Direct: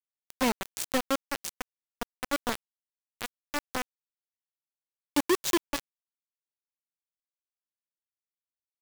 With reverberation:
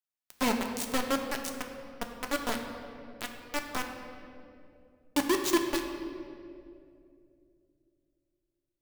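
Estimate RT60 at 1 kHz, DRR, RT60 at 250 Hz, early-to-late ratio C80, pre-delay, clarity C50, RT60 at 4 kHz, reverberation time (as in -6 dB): 2.1 s, 2.5 dB, 3.3 s, 6.5 dB, 3 ms, 5.5 dB, 1.5 s, 2.6 s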